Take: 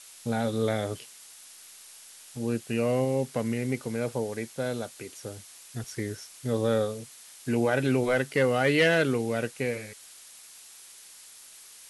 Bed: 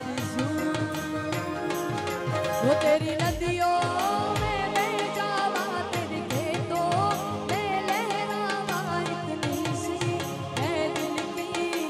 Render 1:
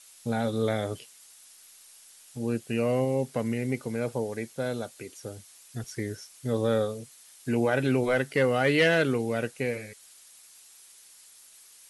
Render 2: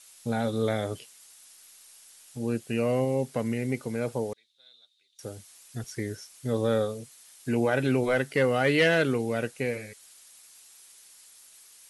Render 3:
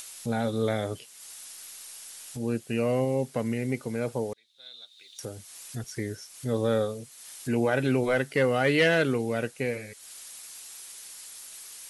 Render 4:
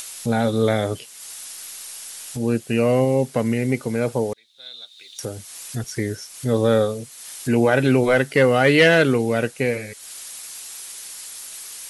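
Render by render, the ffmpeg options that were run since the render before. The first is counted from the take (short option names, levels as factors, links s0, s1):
-af "afftdn=nr=6:nf=-50"
-filter_complex "[0:a]asettb=1/sr,asplit=3[s0][s1][s2];[s0]atrim=end=4.334[s3];[s1]atrim=start=4.33:end=5.19,asetpts=PTS-STARTPTS,afade=t=in:d=0.004:c=qsin,afade=t=out:st=0.856:d=0.004:c=qsin,bandpass=f=3700:t=q:w=17[s4];[s2]atrim=start=5.186[s5];[s3][s4]acrossfade=d=0.004:c1=hsin:c2=qsin[s6];[s6][s5]acrossfade=d=0.004:c1=qsin:c2=hsin"
-af "acompressor=mode=upward:threshold=0.02:ratio=2.5"
-af "volume=2.51"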